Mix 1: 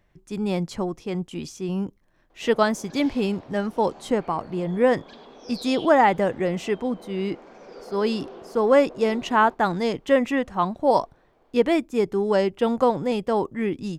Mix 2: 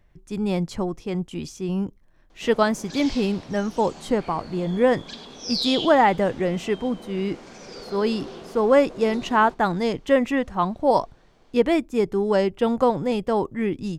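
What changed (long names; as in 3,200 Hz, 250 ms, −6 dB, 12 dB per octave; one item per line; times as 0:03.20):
background: remove resonant band-pass 610 Hz, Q 0.65
master: add low-shelf EQ 84 Hz +9.5 dB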